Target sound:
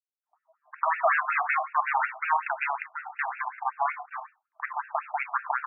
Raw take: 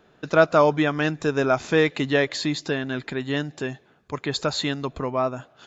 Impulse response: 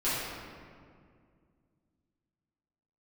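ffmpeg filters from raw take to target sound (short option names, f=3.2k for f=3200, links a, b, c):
-filter_complex "[0:a]highpass=f=140:w=0.5412,highpass=f=140:w=1.3066,aemphasis=mode=reproduction:type=bsi,afwtdn=0.0282,alimiter=limit=-12.5dB:level=0:latency=1:release=79,aeval=exprs='0.237*sin(PI/2*2.82*val(0)/0.237)':c=same,flanger=delay=0.3:depth=2.5:regen=21:speed=0.44:shape=sinusoidal,aeval=exprs='sgn(val(0))*max(abs(val(0))-0.00631,0)':c=same,flanger=delay=1.4:depth=8.8:regen=-81:speed=1.4:shape=sinusoidal,acrossover=split=300|4600[a][b][c];[c]adelay=420[d];[b]adelay=500[e];[a][e][d]amix=inputs=3:normalize=0,asplit=2[f][g];[1:a]atrim=start_sample=2205,atrim=end_sample=6174[h];[g][h]afir=irnorm=-1:irlink=0,volume=-17dB[i];[f][i]amix=inputs=2:normalize=0,afftfilt=real='re*between(b*sr/1024,870*pow(2000/870,0.5+0.5*sin(2*PI*5.4*pts/sr))/1.41,870*pow(2000/870,0.5+0.5*sin(2*PI*5.4*pts/sr))*1.41)':imag='im*between(b*sr/1024,870*pow(2000/870,0.5+0.5*sin(2*PI*5.4*pts/sr))/1.41,870*pow(2000/870,0.5+0.5*sin(2*PI*5.4*pts/sr))*1.41)':win_size=1024:overlap=0.75,volume=6.5dB"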